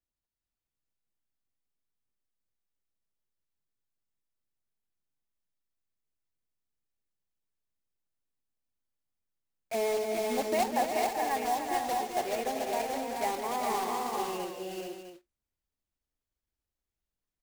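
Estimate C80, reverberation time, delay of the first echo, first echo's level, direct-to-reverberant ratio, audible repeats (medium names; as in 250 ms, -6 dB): no reverb, no reverb, 197 ms, -9.0 dB, no reverb, 6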